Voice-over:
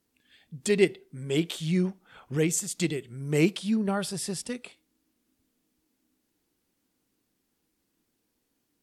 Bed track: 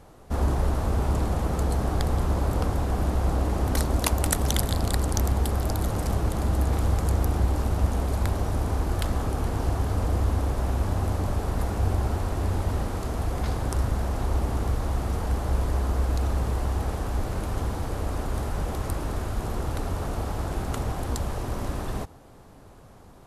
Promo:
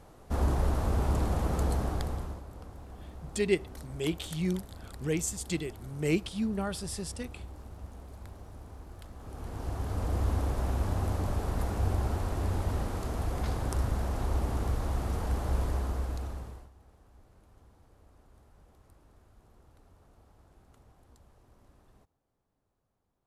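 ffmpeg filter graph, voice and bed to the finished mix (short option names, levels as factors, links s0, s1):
-filter_complex "[0:a]adelay=2700,volume=0.562[s0];[1:a]volume=4.47,afade=t=out:st=1.68:d=0.75:silence=0.133352,afade=t=in:st=9.17:d=1.13:silence=0.149624,afade=t=out:st=15.62:d=1.08:silence=0.0473151[s1];[s0][s1]amix=inputs=2:normalize=0"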